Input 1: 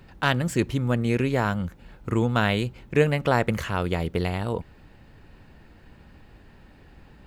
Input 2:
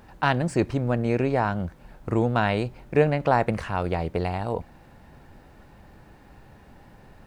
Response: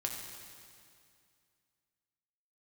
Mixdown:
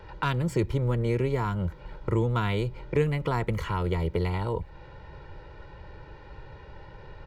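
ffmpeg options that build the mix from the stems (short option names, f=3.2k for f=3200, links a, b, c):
-filter_complex "[0:a]volume=-9dB[a];[1:a]lowpass=f=4.8k:w=0.5412,lowpass=f=4.8k:w=1.3066,aecho=1:1:2.1:0.98,acrossover=split=130[b][c];[c]acompressor=threshold=-31dB:ratio=6[d];[b][d]amix=inputs=2:normalize=0,adelay=1.1,volume=1.5dB,asplit=2[e][f];[f]apad=whole_len=320532[g];[a][g]sidechaingate=range=-33dB:threshold=-39dB:ratio=16:detection=peak[h];[h][e]amix=inputs=2:normalize=0"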